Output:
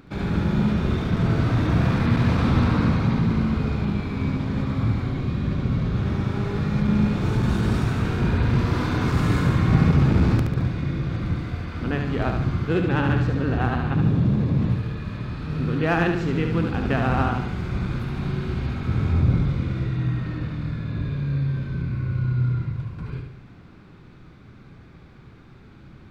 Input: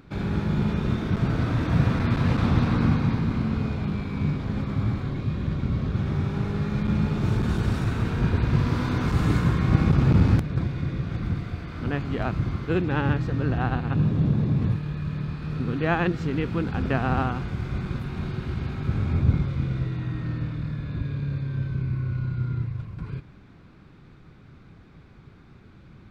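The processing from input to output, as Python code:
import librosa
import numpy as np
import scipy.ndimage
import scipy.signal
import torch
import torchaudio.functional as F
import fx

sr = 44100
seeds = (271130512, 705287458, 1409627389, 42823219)

p1 = fx.hum_notches(x, sr, base_hz=50, count=3)
p2 = 10.0 ** (-19.0 / 20.0) * (np.abs((p1 / 10.0 ** (-19.0 / 20.0) + 3.0) % 4.0 - 2.0) - 1.0)
p3 = p1 + F.gain(torch.from_numpy(p2), -11.0).numpy()
y = fx.echo_feedback(p3, sr, ms=72, feedback_pct=46, wet_db=-5.5)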